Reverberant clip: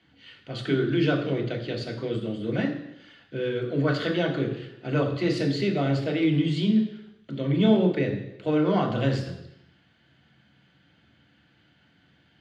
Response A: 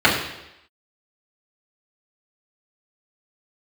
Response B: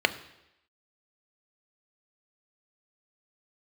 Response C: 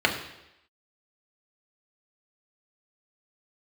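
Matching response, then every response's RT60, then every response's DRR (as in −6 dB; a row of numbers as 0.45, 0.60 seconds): C; 0.85, 0.85, 0.85 seconds; −8.0, 9.5, 0.5 decibels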